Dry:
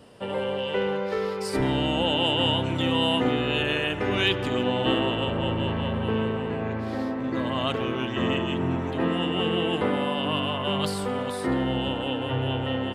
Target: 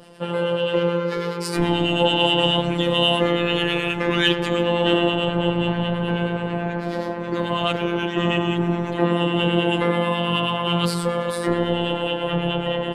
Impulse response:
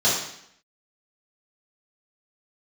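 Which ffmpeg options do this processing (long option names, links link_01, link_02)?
-filter_complex "[0:a]acrossover=split=1100[link_01][link_02];[link_01]aeval=exprs='val(0)*(1-0.5/2+0.5/2*cos(2*PI*9.3*n/s))':channel_layout=same[link_03];[link_02]aeval=exprs='val(0)*(1-0.5/2-0.5/2*cos(2*PI*9.3*n/s))':channel_layout=same[link_04];[link_03][link_04]amix=inputs=2:normalize=0,acontrast=89,afftfilt=real='hypot(re,im)*cos(PI*b)':imag='0':win_size=1024:overlap=0.75,volume=3.5dB"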